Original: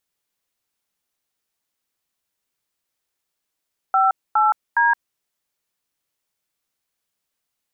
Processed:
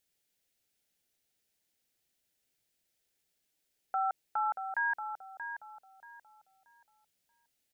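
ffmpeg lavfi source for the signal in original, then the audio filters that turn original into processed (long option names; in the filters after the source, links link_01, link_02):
-f lavfi -i "aevalsrc='0.158*clip(min(mod(t,0.413),0.169-mod(t,0.413))/0.002,0,1)*(eq(floor(t/0.413),0)*(sin(2*PI*770*mod(t,0.413))+sin(2*PI*1336*mod(t,0.413)))+eq(floor(t/0.413),1)*(sin(2*PI*852*mod(t,0.413))+sin(2*PI*1336*mod(t,0.413)))+eq(floor(t/0.413),2)*(sin(2*PI*941*mod(t,0.413))+sin(2*PI*1633*mod(t,0.413))))':duration=1.239:sample_rate=44100"
-filter_complex "[0:a]equalizer=frequency=1100:width_type=o:width=0.53:gain=-14.5,alimiter=level_in=0.5dB:limit=-24dB:level=0:latency=1:release=11,volume=-0.5dB,asplit=2[link_01][link_02];[link_02]adelay=631,lowpass=frequency=1300:poles=1,volume=-6dB,asplit=2[link_03][link_04];[link_04]adelay=631,lowpass=frequency=1300:poles=1,volume=0.35,asplit=2[link_05][link_06];[link_06]adelay=631,lowpass=frequency=1300:poles=1,volume=0.35,asplit=2[link_07][link_08];[link_08]adelay=631,lowpass=frequency=1300:poles=1,volume=0.35[link_09];[link_01][link_03][link_05][link_07][link_09]amix=inputs=5:normalize=0"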